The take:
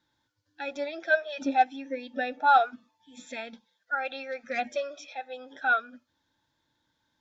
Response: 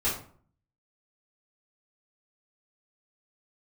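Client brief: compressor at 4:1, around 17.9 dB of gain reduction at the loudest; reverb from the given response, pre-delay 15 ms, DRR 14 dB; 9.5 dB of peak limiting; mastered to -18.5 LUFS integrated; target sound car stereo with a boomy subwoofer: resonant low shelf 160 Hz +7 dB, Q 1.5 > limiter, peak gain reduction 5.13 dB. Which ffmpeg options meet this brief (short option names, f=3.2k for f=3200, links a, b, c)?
-filter_complex "[0:a]acompressor=threshold=-38dB:ratio=4,alimiter=level_in=11.5dB:limit=-24dB:level=0:latency=1,volume=-11.5dB,asplit=2[a][b];[1:a]atrim=start_sample=2205,adelay=15[c];[b][c]afir=irnorm=-1:irlink=0,volume=-23.5dB[d];[a][d]amix=inputs=2:normalize=0,lowshelf=f=160:t=q:w=1.5:g=7,volume=29.5dB,alimiter=limit=-9.5dB:level=0:latency=1"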